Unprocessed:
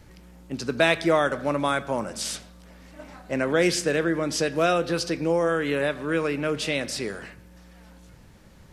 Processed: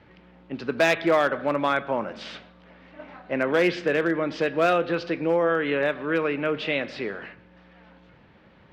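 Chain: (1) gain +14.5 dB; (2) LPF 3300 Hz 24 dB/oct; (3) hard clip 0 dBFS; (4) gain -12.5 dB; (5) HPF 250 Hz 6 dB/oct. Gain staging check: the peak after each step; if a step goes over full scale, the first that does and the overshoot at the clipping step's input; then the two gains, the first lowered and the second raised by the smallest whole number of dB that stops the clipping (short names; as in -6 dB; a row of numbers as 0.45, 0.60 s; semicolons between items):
+8.0, +7.0, 0.0, -12.5, -9.5 dBFS; step 1, 7.0 dB; step 1 +7.5 dB, step 4 -5.5 dB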